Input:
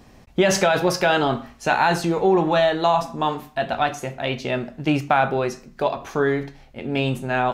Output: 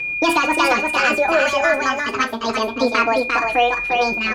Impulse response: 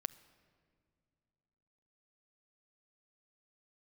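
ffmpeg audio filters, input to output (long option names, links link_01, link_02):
-filter_complex "[0:a]equalizer=frequency=11000:width=0.31:gain=-14.5,acontrast=64,aeval=exprs='val(0)+0.1*sin(2*PI*1400*n/s)':channel_layout=same,asetrate=76440,aresample=44100,equalizer=frequency=1200:width=2.4:gain=-3.5,aecho=1:1:350:0.668,asplit=2[link_01][link_02];[link_02]adelay=3.8,afreqshift=0.29[link_03];[link_01][link_03]amix=inputs=2:normalize=1"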